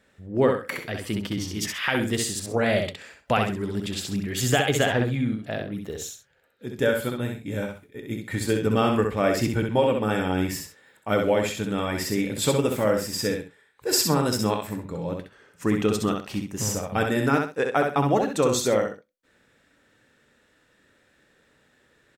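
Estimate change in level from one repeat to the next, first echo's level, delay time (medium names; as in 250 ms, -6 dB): -11.5 dB, -4.5 dB, 65 ms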